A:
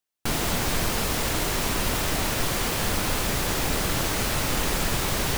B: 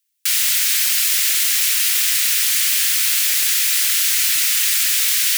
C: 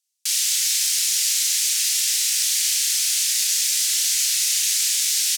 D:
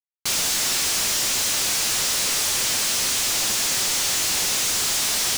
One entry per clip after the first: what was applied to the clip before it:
inverse Chebyshev high-pass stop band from 550 Hz, stop band 60 dB; high shelf 6000 Hz +8 dB; gain +8 dB
band-pass 6200 Hz, Q 1.2; doubler 35 ms -3.5 dB
CVSD 64 kbps; companded quantiser 2-bit; flange 1.5 Hz, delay 7.3 ms, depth 5.2 ms, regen -52%; gain +7 dB

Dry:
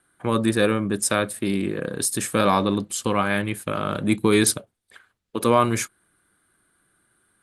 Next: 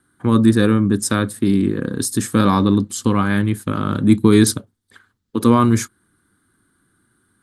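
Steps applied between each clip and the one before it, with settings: fifteen-band EQ 100 Hz +7 dB, 250 Hz +8 dB, 630 Hz -10 dB, 2500 Hz -9 dB, 10000 Hz -5 dB; gain +4 dB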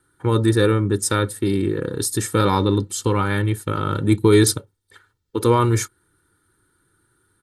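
comb 2.2 ms, depth 74%; gain -2 dB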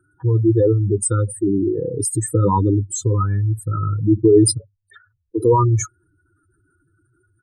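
spectral contrast raised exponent 3.2; gain +2.5 dB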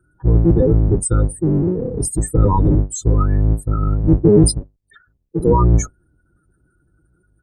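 octaver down 1 oct, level +4 dB; gain -1 dB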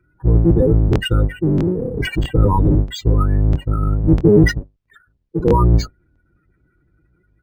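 crackling interface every 0.65 s, samples 1024, repeat, from 0.91; decimation joined by straight lines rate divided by 4×

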